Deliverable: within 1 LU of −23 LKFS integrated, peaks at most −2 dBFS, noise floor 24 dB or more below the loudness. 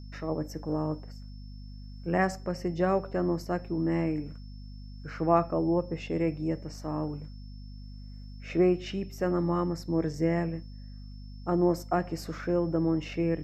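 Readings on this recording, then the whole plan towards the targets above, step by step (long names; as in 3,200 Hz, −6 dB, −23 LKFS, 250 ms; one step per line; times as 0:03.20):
mains hum 50 Hz; hum harmonics up to 250 Hz; level of the hum −41 dBFS; interfering tone 5,300 Hz; level of the tone −59 dBFS; integrated loudness −30.0 LKFS; sample peak −10.0 dBFS; target loudness −23.0 LKFS
→ hum removal 50 Hz, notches 5
notch filter 5,300 Hz, Q 30
level +7 dB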